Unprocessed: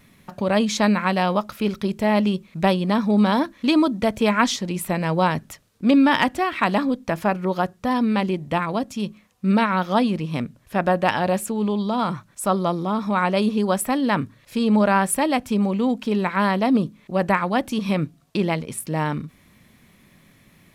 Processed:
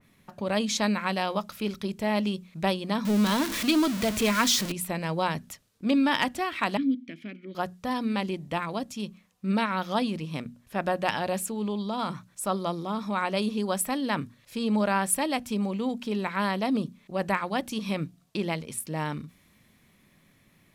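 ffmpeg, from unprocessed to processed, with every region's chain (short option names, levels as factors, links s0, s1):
-filter_complex "[0:a]asettb=1/sr,asplit=3[s0][s1][s2];[s0]atrim=end=3.054[s3];[s1]atrim=start=3.05:end=4.72,asetpts=PTS-STARTPTS,afade=t=in:d=0.004:c=qsin,afade=t=out:st=1.666:d=0.004:c=qsin,aeval=exprs='val(0)+0.5*0.0944*sgn(val(0))':c=same,equalizer=f=790:w=5.4:g=-8,bandreject=f=560:w=11[s4];[s2]atrim=start=4.716[s5];[s3][s4]acrossfade=d=0.004:c1=hsin:c2=qsin[s6];[s6][s5]acrossfade=d=0.004:c1=qsin:c2=hsin,asettb=1/sr,asplit=3[s7][s8][s9];[s7]atrim=end=6.774[s10];[s8]atrim=start=6.77:end=7.55,asetpts=PTS-STARTPTS,afade=t=in:d=0.004:c=qsin,afade=t=out:st=0.776:d=0.004:c=qsin,acontrast=85,asplit=3[s11][s12][s13];[s11]bandpass=f=270:t=q:w=8,volume=1[s14];[s12]bandpass=f=2290:t=q:w=8,volume=0.501[s15];[s13]bandpass=f=3010:t=q:w=8,volume=0.355[s16];[s14][s15][s16]amix=inputs=3:normalize=0[s17];[s9]atrim=start=7.546[s18];[s10][s17]acrossfade=d=0.004:c1=hsin:c2=qsin[s19];[s19][s18]acrossfade=d=0.004:c1=qsin:c2=hsin,bandreject=f=60:t=h:w=6,bandreject=f=120:t=h:w=6,bandreject=f=180:t=h:w=6,bandreject=f=240:t=h:w=6,adynamicequalizer=threshold=0.0158:dfrequency=2500:dqfactor=0.7:tfrequency=2500:tqfactor=0.7:attack=5:release=100:ratio=0.375:range=3:mode=boostabove:tftype=highshelf,volume=0.422"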